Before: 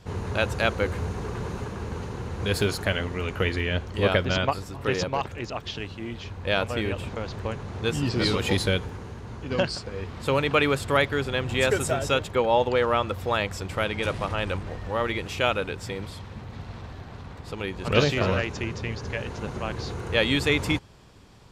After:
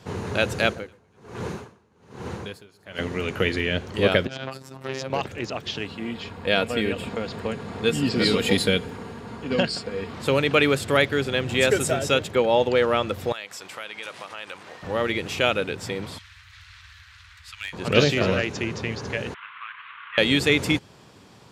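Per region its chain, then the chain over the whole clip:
0:00.64–0:02.99: delay that swaps between a low-pass and a high-pass 120 ms, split 1,400 Hz, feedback 72%, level −11.5 dB + tremolo with a sine in dB 1.2 Hz, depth 32 dB
0:04.27–0:05.10: downward compressor 5 to 1, threshold −25 dBFS + phases set to zero 133 Hz + saturating transformer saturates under 1,000 Hz
0:05.85–0:10.14: notch filter 6,000 Hz, Q 5.9 + comb filter 4.3 ms, depth 38%
0:13.32–0:14.83: high-pass filter 1,400 Hz 6 dB per octave + downward compressor 2 to 1, threshold −40 dBFS
0:16.18–0:17.73: inverse Chebyshev band-stop filter 210–530 Hz, stop band 70 dB + gain into a clipping stage and back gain 27 dB
0:19.34–0:20.18: variable-slope delta modulation 16 kbit/s + elliptic high-pass filter 1,100 Hz
whole clip: high-pass filter 130 Hz 12 dB per octave; dynamic equaliser 1,000 Hz, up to −7 dB, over −42 dBFS, Q 1.6; level +4 dB

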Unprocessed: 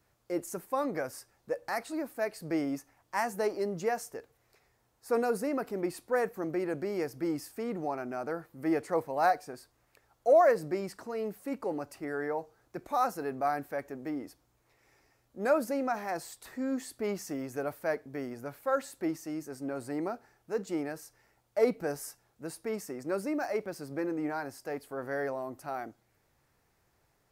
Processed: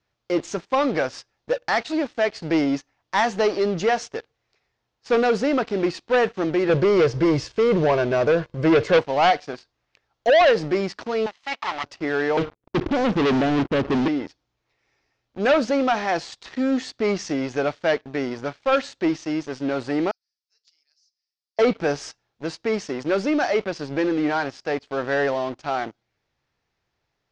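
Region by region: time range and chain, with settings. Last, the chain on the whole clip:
0:06.69–0:08.99: low-shelf EQ 480 Hz +10.5 dB + comb filter 1.9 ms, depth 73%
0:11.26–0:11.84: lower of the sound and its delayed copy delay 0.97 ms + high-pass filter 650 Hz + parametric band 2,700 Hz +4 dB 3 octaves
0:12.37–0:14.08: inverse Chebyshev low-pass filter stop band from 880 Hz + leveller curve on the samples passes 5
0:20.11–0:21.59: four-pole ladder band-pass 5,500 Hz, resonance 65% + high-shelf EQ 8,500 Hz −10.5 dB + comb filter 6.6 ms, depth 55%
whole clip: leveller curve on the samples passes 3; Butterworth low-pass 6,300 Hz 36 dB per octave; parametric band 3,300 Hz +7 dB 1.4 octaves

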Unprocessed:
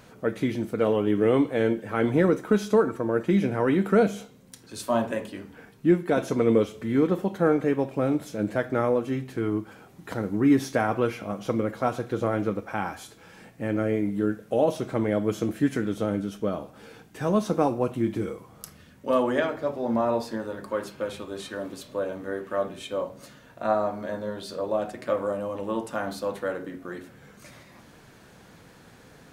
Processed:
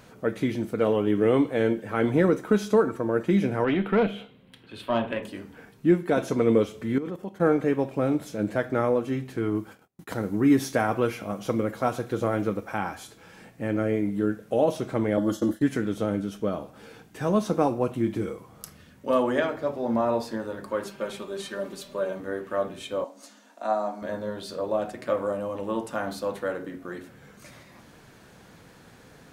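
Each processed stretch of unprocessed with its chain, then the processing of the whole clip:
0:03.64–0:05.23: high shelf with overshoot 4,400 Hz −12.5 dB, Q 3 + tube saturation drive 13 dB, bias 0.4
0:06.98–0:07.41: notch filter 3,900 Hz, Q 9.5 + output level in coarse steps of 16 dB
0:09.55–0:12.78: noise gate −48 dBFS, range −33 dB + high-shelf EQ 7,300 Hz +6.5 dB
0:15.17–0:15.62: downward expander −33 dBFS + Butterworth band-reject 2,400 Hz, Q 2.8 + comb filter 3.5 ms, depth 88%
0:20.84–0:22.20: parametric band 95 Hz −5 dB 1.6 octaves + comb filter 5.1 ms, depth 63%
0:23.04–0:24.02: Chebyshev high-pass with heavy ripple 200 Hz, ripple 9 dB + parametric band 6,700 Hz +13 dB 1.8 octaves
whole clip: no processing

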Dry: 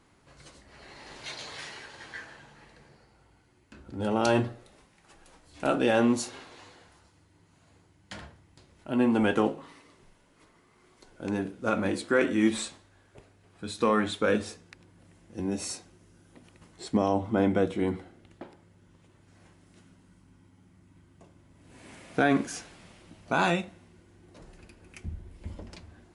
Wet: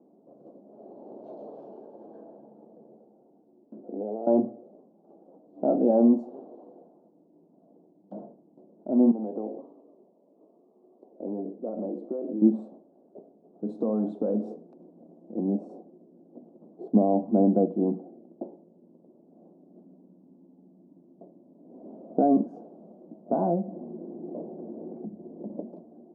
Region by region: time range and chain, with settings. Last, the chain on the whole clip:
0:03.83–0:04.27: high-pass filter 240 Hz + downward compressor, threshold −40 dBFS + hollow resonant body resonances 460/680 Hz, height 9 dB, ringing for 25 ms
0:09.11–0:12.42: high-pass filter 360 Hz 6 dB per octave + notch filter 1,500 Hz, Q 5.5 + downward compressor 3 to 1, threshold −36 dBFS
0:13.69–0:15.44: downward compressor 2 to 1, threshold −33 dBFS + leveller curve on the samples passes 1 + high-shelf EQ 2,900 Hz +10 dB
0:23.36–0:25.61: notch filter 1,300 Hz, Q 11 + upward compression, threshold −30 dBFS + linear-phase brick-wall low-pass 2,300 Hz
whole clip: dynamic equaliser 420 Hz, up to −7 dB, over −39 dBFS, Q 1.1; elliptic band-pass filter 200–680 Hz, stop band 50 dB; level +8.5 dB

